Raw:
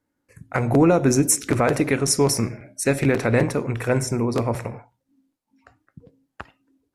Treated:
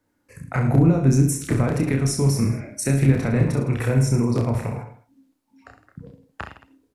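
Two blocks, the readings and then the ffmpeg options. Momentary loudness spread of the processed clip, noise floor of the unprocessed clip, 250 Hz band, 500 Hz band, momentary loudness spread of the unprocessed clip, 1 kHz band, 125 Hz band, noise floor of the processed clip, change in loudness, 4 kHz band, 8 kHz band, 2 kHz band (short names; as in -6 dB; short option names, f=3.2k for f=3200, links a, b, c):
14 LU, -78 dBFS, +0.5 dB, -5.5 dB, 10 LU, -5.5 dB, +6.0 dB, -71 dBFS, 0.0 dB, -6.0 dB, -6.0 dB, -5.0 dB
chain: -filter_complex "[0:a]acrossover=split=210[a][b];[b]acompressor=threshold=-32dB:ratio=6[c];[a][c]amix=inputs=2:normalize=0,asplit=2[d][e];[e]aecho=0:1:30|66|109.2|161|223.2:0.631|0.398|0.251|0.158|0.1[f];[d][f]amix=inputs=2:normalize=0,volume=4.5dB"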